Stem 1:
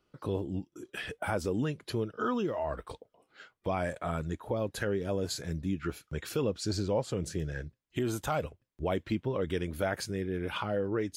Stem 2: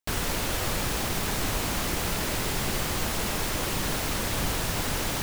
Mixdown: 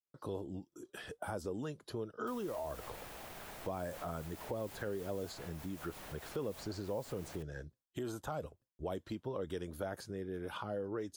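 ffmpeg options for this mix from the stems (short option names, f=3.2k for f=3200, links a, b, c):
-filter_complex "[0:a]agate=range=-33dB:threshold=-57dB:ratio=3:detection=peak,equalizer=f=2.3k:t=o:w=0.99:g=-13,volume=-1.5dB,asplit=2[a][b];[1:a]equalizer=f=660:t=o:w=0.77:g=6.5,highshelf=f=8.3k:g=11.5,adelay=2200,volume=-19dB[c];[b]apad=whole_len=327414[d];[c][d]sidechaincompress=threshold=-42dB:ratio=4:attack=16:release=100[e];[a][e]amix=inputs=2:normalize=0,lowshelf=f=380:g=-7,acrossover=split=440|3200[f][g][h];[f]acompressor=threshold=-40dB:ratio=4[i];[g]acompressor=threshold=-40dB:ratio=4[j];[h]acompressor=threshold=-55dB:ratio=4[k];[i][j][k]amix=inputs=3:normalize=0"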